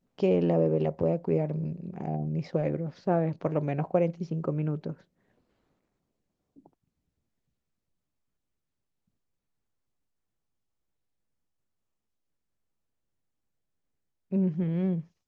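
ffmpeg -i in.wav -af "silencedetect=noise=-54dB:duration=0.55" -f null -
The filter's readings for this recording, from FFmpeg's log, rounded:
silence_start: 5.02
silence_end: 6.56 | silence_duration: 1.54
silence_start: 6.67
silence_end: 14.31 | silence_duration: 7.64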